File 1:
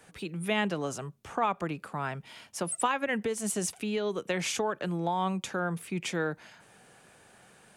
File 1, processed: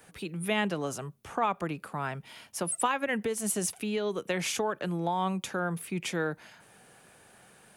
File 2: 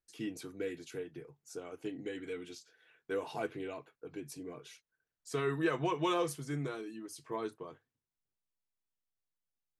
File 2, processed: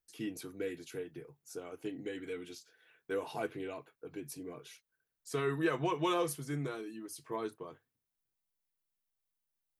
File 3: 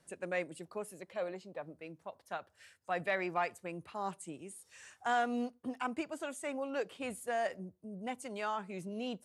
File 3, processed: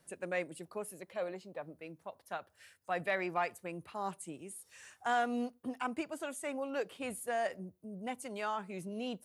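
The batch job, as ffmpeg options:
-af "aexciter=amount=1.7:drive=6:freq=10k"

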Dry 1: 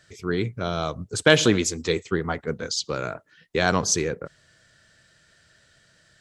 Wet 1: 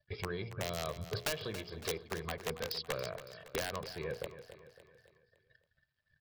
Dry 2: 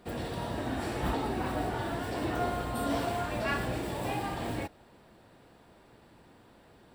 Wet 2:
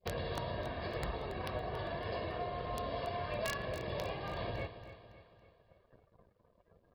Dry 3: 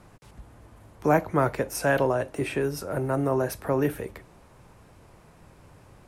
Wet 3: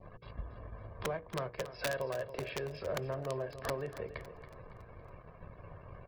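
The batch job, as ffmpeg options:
-af "acompressor=threshold=-38dB:ratio=12,aecho=1:1:1.8:0.69,aresample=11025,aeval=exprs='sgn(val(0))*max(abs(val(0))-0.00178,0)':c=same,aresample=44100,acontrast=75,aeval=exprs='(mod(14.1*val(0)+1,2)-1)/14.1':c=same,adynamicequalizer=threshold=0.002:dfrequency=1400:dqfactor=3.3:tfrequency=1400:tqfactor=3.3:attack=5:release=100:ratio=0.375:range=2.5:mode=cutabove:tftype=bell,afftdn=nr=23:nf=-55,bandreject=f=60:t=h:w=6,bandreject=f=120:t=h:w=6,bandreject=f=180:t=h:w=6,bandreject=f=240:t=h:w=6,bandreject=f=300:t=h:w=6,bandreject=f=360:t=h:w=6,bandreject=f=420:t=h:w=6,bandreject=f=480:t=h:w=6,aecho=1:1:279|558|837|1116|1395:0.237|0.114|0.0546|0.0262|0.0126,volume=-3dB"

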